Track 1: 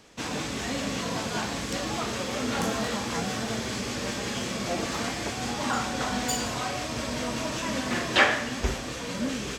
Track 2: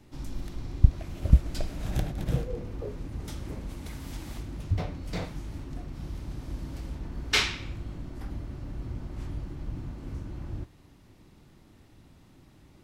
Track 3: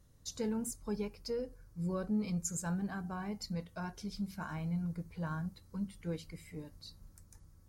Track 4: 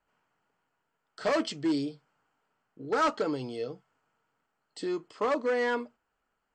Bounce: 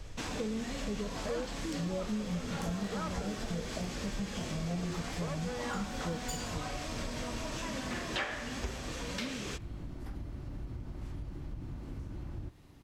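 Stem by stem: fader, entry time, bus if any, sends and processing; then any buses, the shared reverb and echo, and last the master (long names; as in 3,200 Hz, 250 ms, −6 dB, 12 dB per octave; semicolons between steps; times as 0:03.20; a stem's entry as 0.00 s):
−1.0 dB, 0.00 s, no send, no processing
−1.5 dB, 1.85 s, no send, downward compressor 2 to 1, threshold −34 dBFS, peak gain reduction 13.5 dB
0.0 dB, 0.00 s, no send, low-pass with resonance 600 Hz, resonance Q 4.9; spectral tilt −4.5 dB per octave
−3.5 dB, 0.00 s, no send, no processing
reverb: not used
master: downward compressor 3 to 1, threshold −37 dBFS, peak gain reduction 16 dB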